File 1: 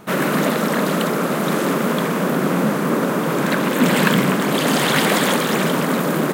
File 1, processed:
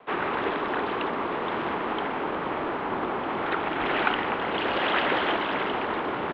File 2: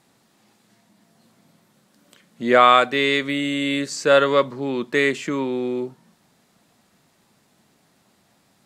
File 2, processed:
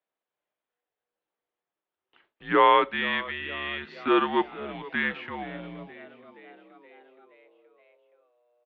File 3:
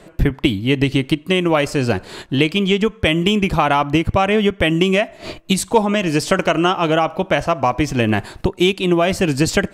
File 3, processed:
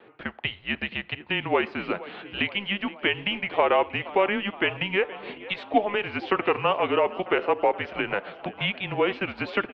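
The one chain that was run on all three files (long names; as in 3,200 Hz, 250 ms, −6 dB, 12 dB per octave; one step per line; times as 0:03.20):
noise gate with hold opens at −41 dBFS
parametric band 910 Hz +2 dB
floating-point word with a short mantissa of 4 bits
on a send: echo with shifted repeats 473 ms, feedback 62%, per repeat +72 Hz, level −18.5 dB
on the sum: single-sideband voice off tune −200 Hz 520–3,500 Hz
level −5.5 dB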